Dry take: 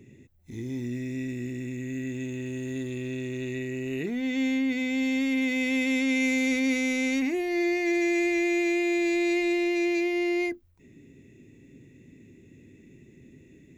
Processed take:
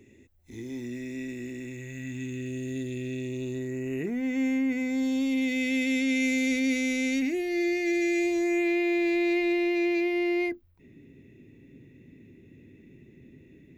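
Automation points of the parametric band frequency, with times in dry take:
parametric band −14.5 dB 0.74 octaves
0:01.63 150 Hz
0:02.53 1,100 Hz
0:03.14 1,100 Hz
0:03.87 3,800 Hz
0:04.77 3,800 Hz
0:05.61 1,000 Hz
0:08.16 1,000 Hz
0:08.71 7,400 Hz

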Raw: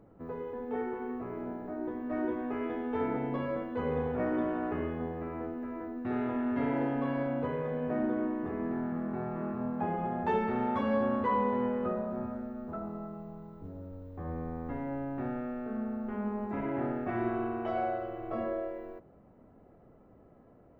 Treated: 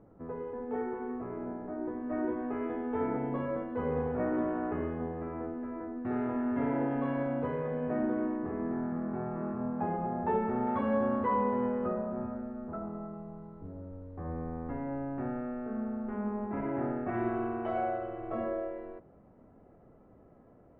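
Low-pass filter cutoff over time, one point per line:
1,900 Hz
from 0:06.91 2,500 Hz
from 0:08.37 1,800 Hz
from 0:09.97 1,400 Hz
from 0:10.67 2,000 Hz
from 0:17.14 2,700 Hz

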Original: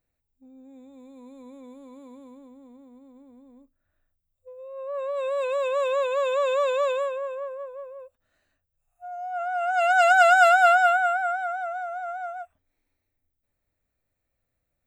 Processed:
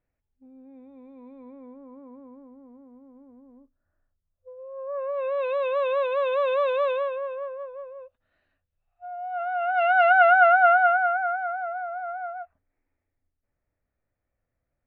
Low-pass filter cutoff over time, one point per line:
low-pass filter 24 dB per octave
0:01.33 2,500 Hz
0:01.87 1,600 Hz
0:04.81 1,600 Hz
0:05.50 3,600 Hz
0:09.47 3,600 Hz
0:10.50 2,100 Hz

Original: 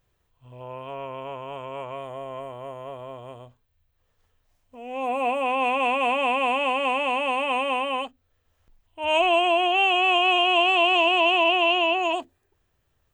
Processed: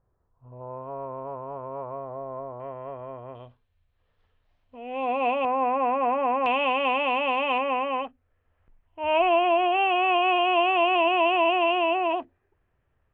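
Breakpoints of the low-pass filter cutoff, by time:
low-pass filter 24 dB per octave
1,300 Hz
from 0:02.60 2,000 Hz
from 0:03.35 3,900 Hz
from 0:05.45 1,700 Hz
from 0:06.46 3,700 Hz
from 0:07.58 2,400 Hz

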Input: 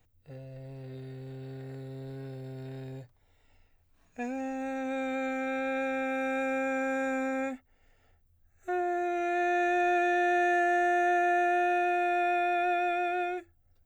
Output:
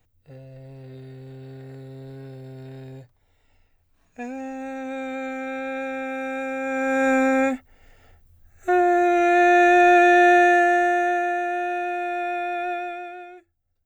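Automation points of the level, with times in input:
0:06.58 +2 dB
0:07.10 +12 dB
0:10.29 +12 dB
0:11.42 +1 dB
0:12.72 +1 dB
0:13.26 −9 dB

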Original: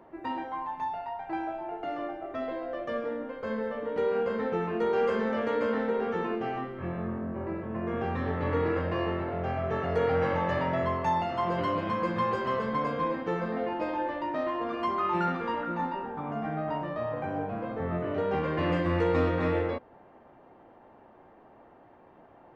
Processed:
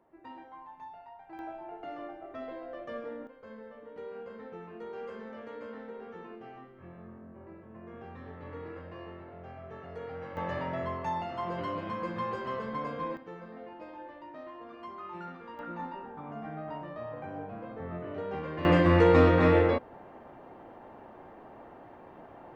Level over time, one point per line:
−13.5 dB
from 0:01.39 −7 dB
from 0:03.27 −15 dB
from 0:10.37 −6 dB
from 0:13.17 −14.5 dB
from 0:15.59 −7.5 dB
from 0:18.65 +5.5 dB

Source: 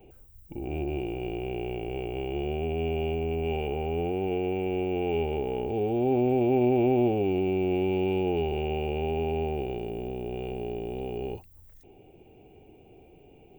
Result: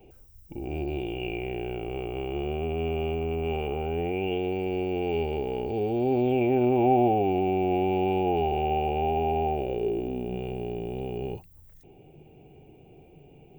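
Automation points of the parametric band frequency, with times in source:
parametric band +11.5 dB 0.38 octaves
0:00.70 5,400 Hz
0:01.88 1,200 Hz
0:03.77 1,200 Hz
0:04.57 4,600 Hz
0:06.16 4,600 Hz
0:06.87 750 Hz
0:09.51 750 Hz
0:10.45 150 Hz

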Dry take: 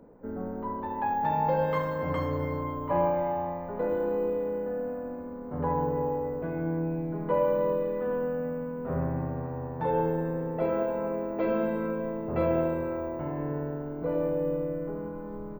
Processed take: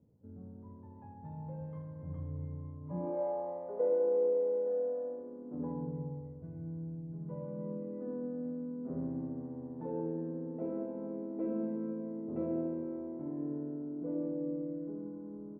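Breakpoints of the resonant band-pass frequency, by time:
resonant band-pass, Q 3.1
0:02.81 110 Hz
0:03.21 500 Hz
0:05.07 500 Hz
0:06.39 110 Hz
0:07.07 110 Hz
0:08.05 270 Hz

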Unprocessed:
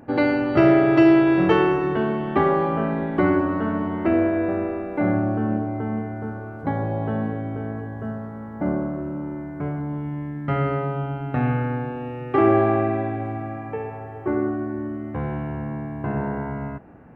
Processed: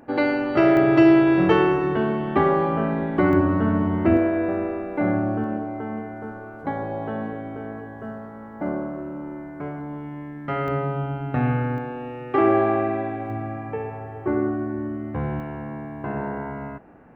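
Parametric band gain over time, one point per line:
parametric band 100 Hz 2.1 octaves
−8.5 dB
from 0:00.77 +0.5 dB
from 0:03.33 +8.5 dB
from 0:04.17 −3 dB
from 0:05.44 −10.5 dB
from 0:10.68 0 dB
from 0:11.78 −7 dB
from 0:13.30 +1 dB
from 0:15.40 −7.5 dB

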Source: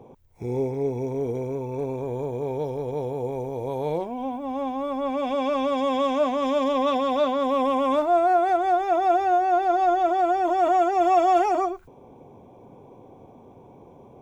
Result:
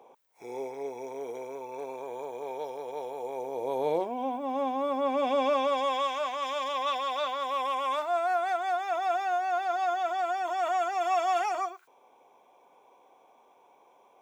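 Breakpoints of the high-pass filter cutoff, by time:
0:03.21 730 Hz
0:03.84 320 Hz
0:05.37 320 Hz
0:06.15 1,100 Hz

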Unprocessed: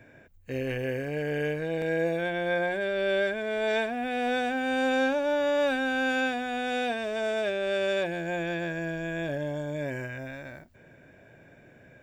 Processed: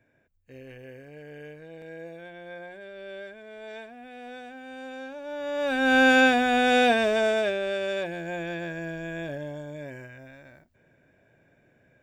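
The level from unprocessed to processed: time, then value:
0:05.09 −14 dB
0:05.64 −2.5 dB
0:05.94 +9 dB
0:07.02 +9 dB
0:07.80 −2 dB
0:09.17 −2 dB
0:10.17 −8.5 dB

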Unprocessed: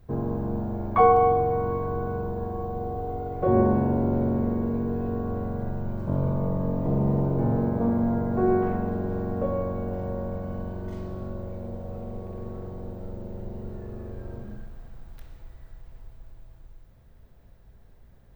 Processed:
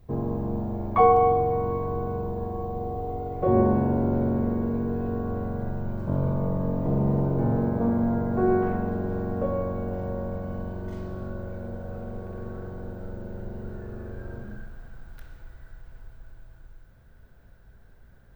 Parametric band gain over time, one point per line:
parametric band 1,500 Hz 0.21 octaves
0:03.21 −8 dB
0:04.04 +3 dB
0:10.88 +3 dB
0:11.58 +14.5 dB

